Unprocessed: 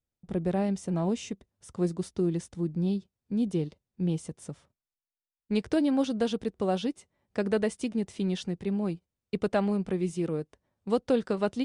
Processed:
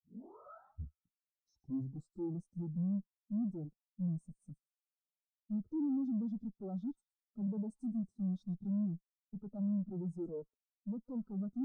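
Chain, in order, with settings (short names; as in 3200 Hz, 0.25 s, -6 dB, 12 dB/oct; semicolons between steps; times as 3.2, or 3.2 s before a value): tape start at the beginning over 2.35 s; HPF 64 Hz 6 dB/oct; high shelf 5900 Hz +6 dB; small resonant body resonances 230/1300 Hz, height 7 dB, ringing for 25 ms; tube stage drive 41 dB, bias 0.75; band shelf 2300 Hz -13 dB 1.1 oct; on a send: thin delay 0.12 s, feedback 61%, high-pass 1600 Hz, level -7.5 dB; on the sum: spectral expander 2.5:1; gain +4.5 dB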